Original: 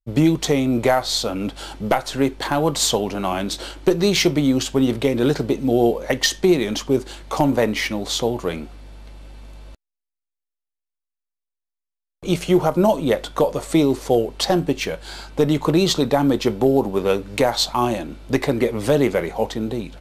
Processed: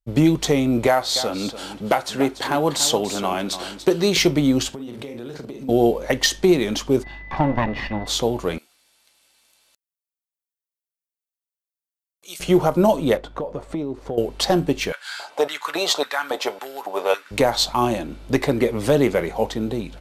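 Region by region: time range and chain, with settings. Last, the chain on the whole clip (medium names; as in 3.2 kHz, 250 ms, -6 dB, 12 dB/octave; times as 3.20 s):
0.87–4.17 s: high-pass 180 Hz 6 dB/octave + delay 288 ms -12 dB
4.69–5.69 s: high-pass 110 Hz + doubling 42 ms -7 dB + compression 10:1, threshold -30 dBFS
7.03–8.06 s: comb filter that takes the minimum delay 1.1 ms + whistle 2 kHz -35 dBFS + distance through air 320 m
8.58–12.40 s: high-pass 95 Hz 6 dB/octave + differentiator
13.17–14.18 s: low-pass 1.2 kHz 6 dB/octave + compression, threshold -23 dBFS + transient shaper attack 0 dB, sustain -6 dB
14.92–17.31 s: comb 7 ms, depth 32% + LFO high-pass square 1.8 Hz 690–1500 Hz
whole clip: none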